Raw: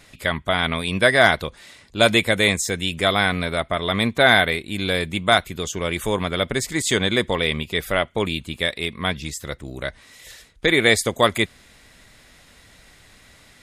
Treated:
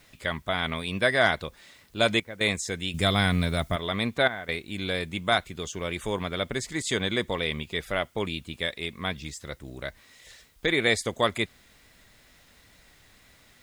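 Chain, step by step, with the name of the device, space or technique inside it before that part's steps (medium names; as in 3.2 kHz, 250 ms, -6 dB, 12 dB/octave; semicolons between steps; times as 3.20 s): worn cassette (low-pass 8.7 kHz 12 dB/octave; wow and flutter 23 cents; level dips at 2.20/4.28 s, 205 ms -12 dB; white noise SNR 36 dB); 2.94–3.76 s: tone controls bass +11 dB, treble +9 dB; trim -7 dB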